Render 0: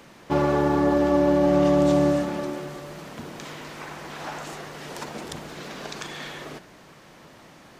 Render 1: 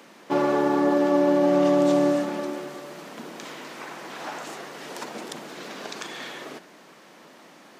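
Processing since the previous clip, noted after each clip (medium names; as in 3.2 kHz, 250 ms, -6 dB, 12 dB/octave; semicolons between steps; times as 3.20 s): high-pass 200 Hz 24 dB/octave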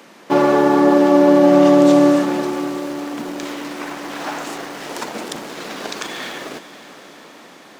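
in parallel at -7 dB: small samples zeroed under -36 dBFS; on the sum: echo that smears into a reverb 521 ms, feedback 62%, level -14 dB; trim +5 dB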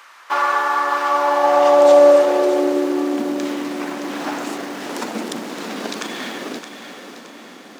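thinning echo 619 ms, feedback 41%, high-pass 420 Hz, level -9.5 dB; high-pass sweep 1.2 kHz -> 220 Hz, 1.01–3.52 s; trim -1 dB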